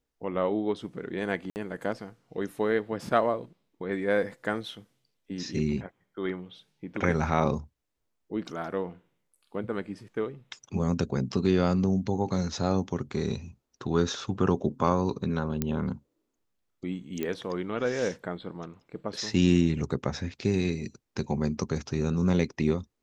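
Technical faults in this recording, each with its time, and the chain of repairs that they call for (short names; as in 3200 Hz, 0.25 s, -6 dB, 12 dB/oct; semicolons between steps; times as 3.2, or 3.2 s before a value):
1.5–1.56 gap 59 ms
15.62 pop -13 dBFS
17.23 pop -18 dBFS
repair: de-click; interpolate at 1.5, 59 ms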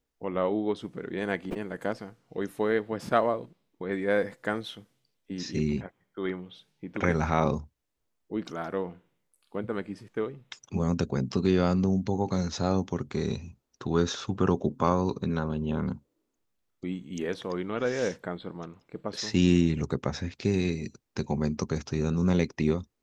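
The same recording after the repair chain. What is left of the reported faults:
17.23 pop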